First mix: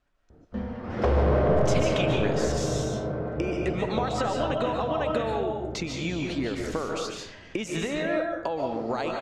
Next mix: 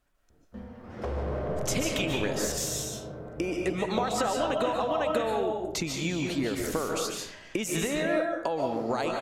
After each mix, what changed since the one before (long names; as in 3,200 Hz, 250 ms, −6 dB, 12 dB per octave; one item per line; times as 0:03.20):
background −10.0 dB
master: remove low-pass filter 5,300 Hz 12 dB per octave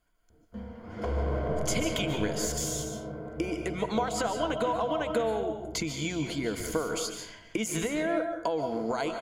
speech: send −6.0 dB
master: add EQ curve with evenly spaced ripples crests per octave 1.8, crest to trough 9 dB